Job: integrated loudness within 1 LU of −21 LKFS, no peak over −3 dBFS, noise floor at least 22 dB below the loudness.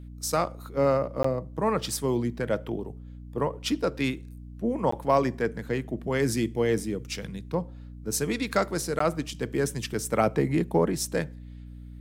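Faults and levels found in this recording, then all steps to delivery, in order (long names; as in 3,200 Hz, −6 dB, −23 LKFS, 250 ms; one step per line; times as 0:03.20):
number of dropouts 3; longest dropout 14 ms; mains hum 60 Hz; hum harmonics up to 300 Hz; level of the hum −39 dBFS; integrated loudness −28.0 LKFS; sample peak −9.0 dBFS; target loudness −21.0 LKFS
→ repair the gap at 0:01.23/0:04.91/0:08.99, 14 ms
mains-hum notches 60/120/180/240/300 Hz
level +7 dB
brickwall limiter −3 dBFS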